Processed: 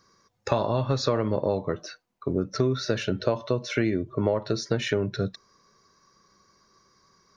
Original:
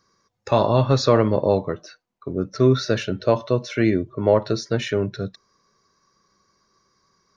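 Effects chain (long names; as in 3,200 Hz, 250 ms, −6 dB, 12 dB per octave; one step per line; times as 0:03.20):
downward compressor 6 to 1, threshold −24 dBFS, peak gain reduction 13 dB
level +3 dB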